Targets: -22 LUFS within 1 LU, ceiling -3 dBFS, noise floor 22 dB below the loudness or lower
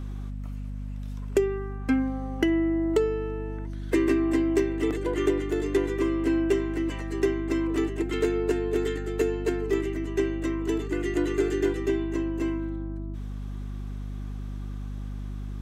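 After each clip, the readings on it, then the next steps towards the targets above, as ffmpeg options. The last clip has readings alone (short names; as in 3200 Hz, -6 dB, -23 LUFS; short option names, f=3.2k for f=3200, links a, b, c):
hum 50 Hz; harmonics up to 250 Hz; hum level -31 dBFS; loudness -28.0 LUFS; peak -10.5 dBFS; loudness target -22.0 LUFS
-> -af "bandreject=f=50:t=h:w=6,bandreject=f=100:t=h:w=6,bandreject=f=150:t=h:w=6,bandreject=f=200:t=h:w=6,bandreject=f=250:t=h:w=6"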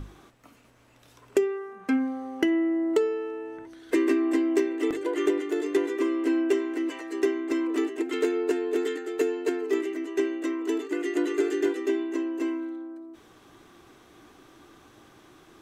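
hum none; loudness -27.5 LUFS; peak -11.0 dBFS; loudness target -22.0 LUFS
-> -af "volume=5.5dB"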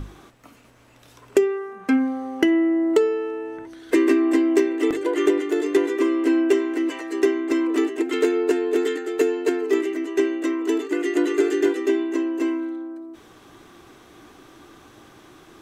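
loudness -22.0 LUFS; peak -5.5 dBFS; noise floor -51 dBFS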